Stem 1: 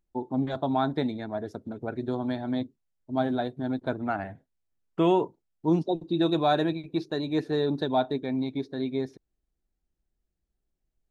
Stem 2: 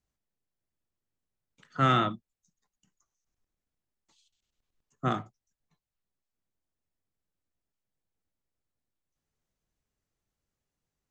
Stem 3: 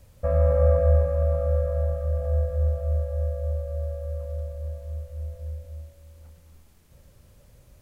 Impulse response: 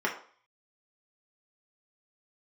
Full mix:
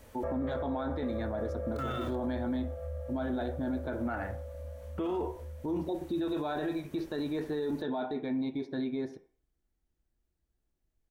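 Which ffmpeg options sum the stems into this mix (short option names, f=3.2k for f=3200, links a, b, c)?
-filter_complex "[0:a]equalizer=f=87:t=o:w=2.4:g=6,volume=-1.5dB,asplit=2[a][b];[b]volume=-15.5dB[c];[1:a]aeval=exprs='val(0)*gte(abs(val(0)),0.0141)':c=same,asplit=2[d][e];[e]adelay=2.1,afreqshift=0.81[f];[d][f]amix=inputs=2:normalize=1,volume=0dB[g];[2:a]alimiter=limit=-16.5dB:level=0:latency=1,acompressor=threshold=-40dB:ratio=2,volume=-1dB,asplit=2[h][i];[i]volume=-4dB[j];[a][g]amix=inputs=2:normalize=0,acompressor=threshold=-31dB:ratio=6,volume=0dB[k];[3:a]atrim=start_sample=2205[l];[c][j]amix=inputs=2:normalize=0[m];[m][l]afir=irnorm=-1:irlink=0[n];[h][k][n]amix=inputs=3:normalize=0,alimiter=level_in=2dB:limit=-24dB:level=0:latency=1:release=11,volume=-2dB"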